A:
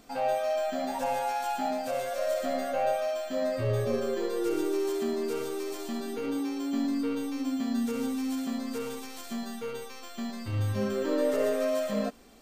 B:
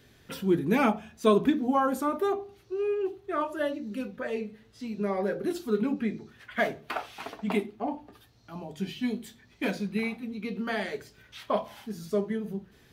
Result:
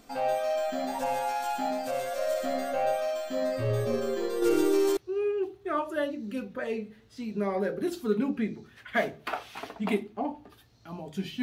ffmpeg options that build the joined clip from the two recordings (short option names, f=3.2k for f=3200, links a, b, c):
-filter_complex "[0:a]asettb=1/sr,asplit=3[a][b][c];[a]atrim=end=4.424[d];[b]atrim=start=4.42:end=4.97,asetpts=PTS-STARTPTS,afade=t=in:d=0.004:c=qsin,afade=t=out:st=0.546:d=0.004:c=qsin,acontrast=24[e];[c]atrim=start=4.966[f];[d][e]acrossfade=d=0.004:c1=hsin:c2=qsin[g];[g][f]acrossfade=d=0.004:c1=qsin:c2=hsin,apad=whole_dur=11.42,atrim=end=11.42,atrim=end=4.972[h];[1:a]atrim=start=2.598:end=9.05[i];[h][i]acrossfade=d=0.004:c1=hsin:c2=hsin"